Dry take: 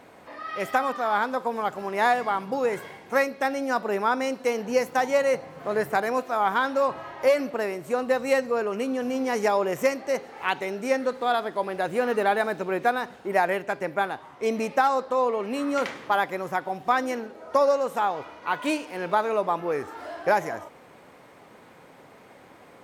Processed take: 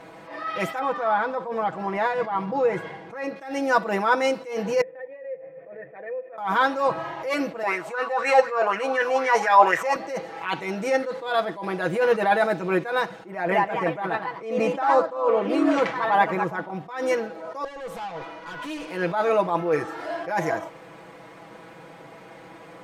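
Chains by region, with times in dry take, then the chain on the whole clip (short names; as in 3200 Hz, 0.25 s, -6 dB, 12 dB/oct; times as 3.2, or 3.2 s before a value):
0.79–3.36 LPF 2200 Hz 6 dB/oct + compressor 3:1, threshold -25 dBFS
4.81–6.38 vocal tract filter e + compressor, threshold -37 dBFS
7.63–9.96 weighting filter A + LFO bell 4 Hz 720–1900 Hz +17 dB
13.3–16.89 echoes that change speed 0.206 s, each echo +2 st, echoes 2, each echo -6 dB + high shelf 3100 Hz -9.5 dB
17.64–18.88 compressor 12:1, threshold -28 dBFS + tube stage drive 37 dB, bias 0.35
whole clip: high shelf 10000 Hz -11.5 dB; comb 6.1 ms, depth 82%; attack slew limiter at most 100 dB/s; gain +4 dB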